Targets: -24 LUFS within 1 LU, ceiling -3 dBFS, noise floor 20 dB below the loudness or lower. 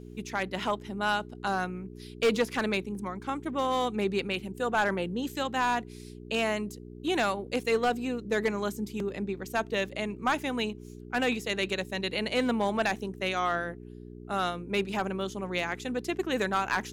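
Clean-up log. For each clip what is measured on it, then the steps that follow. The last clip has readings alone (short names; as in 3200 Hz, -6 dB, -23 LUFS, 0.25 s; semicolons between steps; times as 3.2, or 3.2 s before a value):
clipped 0.4%; flat tops at -18.5 dBFS; hum 60 Hz; harmonics up to 420 Hz; hum level -43 dBFS; loudness -30.5 LUFS; peak -18.5 dBFS; loudness target -24.0 LUFS
-> clip repair -18.5 dBFS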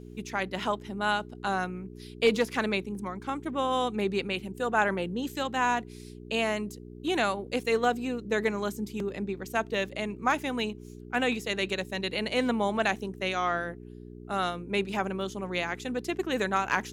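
clipped 0.0%; hum 60 Hz; harmonics up to 420 Hz; hum level -43 dBFS
-> de-hum 60 Hz, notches 7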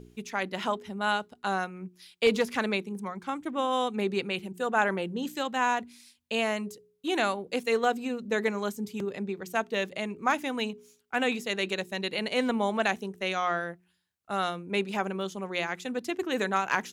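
hum none; loudness -30.0 LUFS; peak -9.5 dBFS; loudness target -24.0 LUFS
-> gain +6 dB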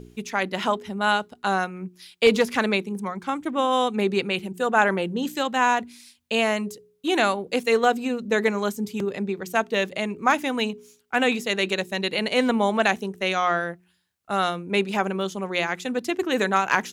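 loudness -24.0 LUFS; peak -3.5 dBFS; noise floor -63 dBFS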